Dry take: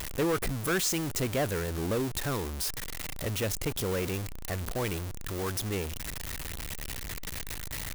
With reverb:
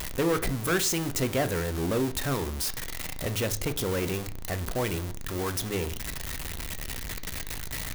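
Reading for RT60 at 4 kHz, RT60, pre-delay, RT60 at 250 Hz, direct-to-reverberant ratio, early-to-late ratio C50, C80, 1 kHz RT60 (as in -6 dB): 0.45 s, 0.40 s, 3 ms, 0.50 s, 8.5 dB, 17.0 dB, 22.5 dB, 0.40 s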